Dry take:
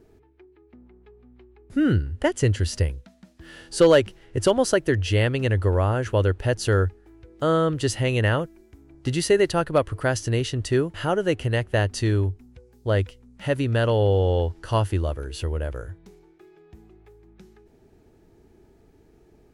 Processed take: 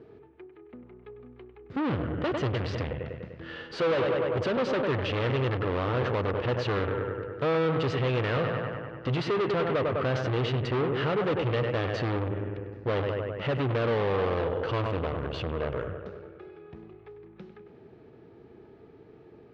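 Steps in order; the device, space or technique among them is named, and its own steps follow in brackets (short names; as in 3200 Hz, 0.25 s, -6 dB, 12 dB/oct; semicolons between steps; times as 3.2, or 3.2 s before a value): analogue delay pedal into a guitar amplifier (analogue delay 99 ms, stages 2048, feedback 67%, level -11 dB; tube stage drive 33 dB, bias 0.6; speaker cabinet 110–3800 Hz, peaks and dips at 130 Hz +5 dB, 470 Hz +6 dB, 1200 Hz +5 dB); gain +6 dB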